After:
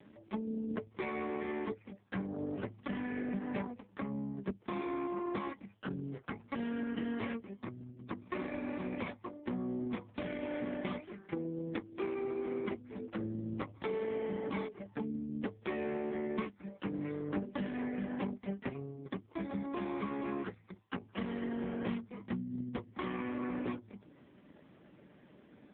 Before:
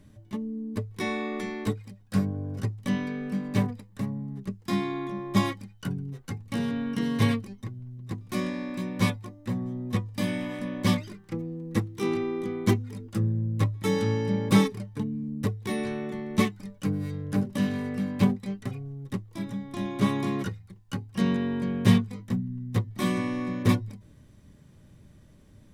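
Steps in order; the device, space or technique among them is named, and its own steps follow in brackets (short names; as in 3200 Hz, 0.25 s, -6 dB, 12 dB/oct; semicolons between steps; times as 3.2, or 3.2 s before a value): voicemail (BPF 310–2900 Hz; compressor 8:1, threshold -40 dBFS, peak gain reduction 18.5 dB; gain +7.5 dB; AMR-NB 4.75 kbps 8000 Hz)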